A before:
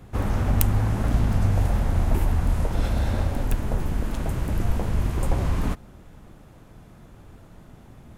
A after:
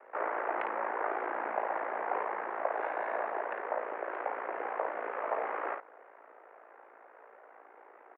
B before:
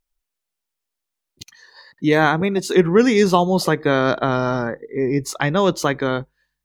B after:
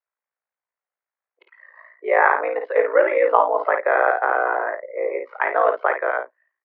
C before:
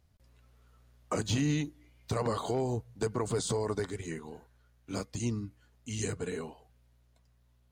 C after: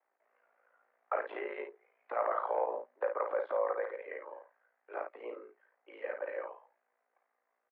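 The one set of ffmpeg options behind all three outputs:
ffmpeg -i in.wav -af "aeval=exprs='val(0)*sin(2*PI*28*n/s)':channel_layout=same,aecho=1:1:26|54:0.168|0.501,highpass=frequency=400:width_type=q:width=0.5412,highpass=frequency=400:width_type=q:width=1.307,lowpass=frequency=2000:width_type=q:width=0.5176,lowpass=frequency=2000:width_type=q:width=0.7071,lowpass=frequency=2000:width_type=q:width=1.932,afreqshift=98,volume=3.5dB" out.wav

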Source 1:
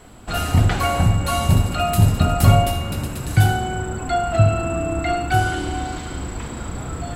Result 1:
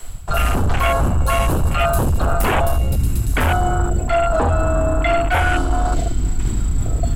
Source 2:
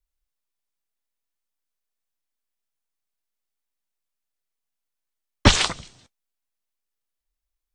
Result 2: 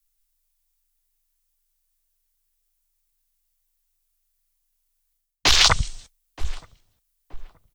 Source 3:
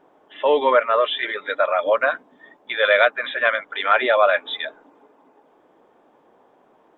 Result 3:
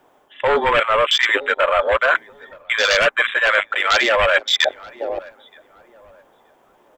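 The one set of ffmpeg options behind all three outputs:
ffmpeg -i in.wav -filter_complex "[0:a]afreqshift=-22,lowshelf=frequency=440:gain=5.5,aeval=exprs='1.68*sin(PI/2*5.62*val(0)/1.68)':channel_layout=same,equalizer=frequency=230:width=0.54:gain=-10.5,asplit=2[link_01][link_02];[link_02]adelay=925,lowpass=frequency=940:poles=1,volume=-15.5dB,asplit=2[link_03][link_04];[link_04]adelay=925,lowpass=frequency=940:poles=1,volume=0.39,asplit=2[link_05][link_06];[link_06]adelay=925,lowpass=frequency=940:poles=1,volume=0.39[link_07];[link_03][link_05][link_07]amix=inputs=3:normalize=0[link_08];[link_01][link_08]amix=inputs=2:normalize=0,afwtdn=0.316,crystalizer=i=2.5:c=0,areverse,acompressor=threshold=-15dB:ratio=5,areverse" out.wav

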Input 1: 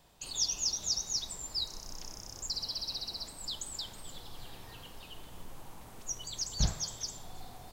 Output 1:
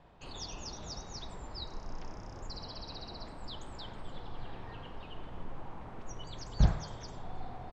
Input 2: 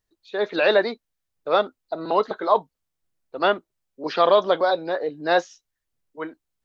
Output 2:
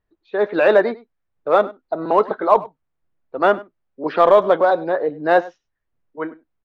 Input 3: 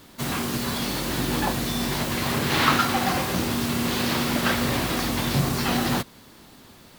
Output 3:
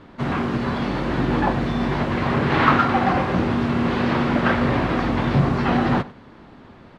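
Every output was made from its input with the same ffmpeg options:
ffmpeg -i in.wav -filter_complex "[0:a]lowpass=1800,asplit=2[link_01][link_02];[link_02]volume=16.5dB,asoftclip=hard,volume=-16.5dB,volume=-11.5dB[link_03];[link_01][link_03]amix=inputs=2:normalize=0,aecho=1:1:99:0.1,volume=3.5dB" out.wav

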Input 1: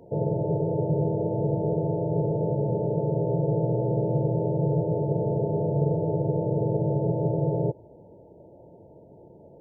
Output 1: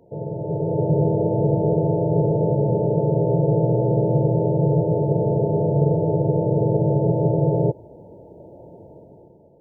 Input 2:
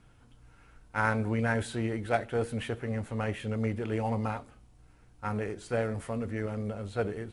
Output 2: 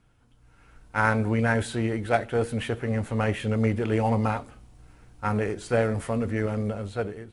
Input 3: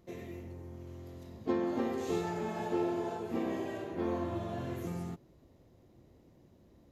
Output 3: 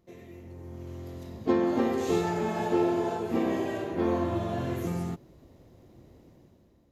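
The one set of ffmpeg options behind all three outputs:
ffmpeg -i in.wav -af "dynaudnorm=framelen=140:gausssize=9:maxgain=11dB,volume=-4dB" out.wav

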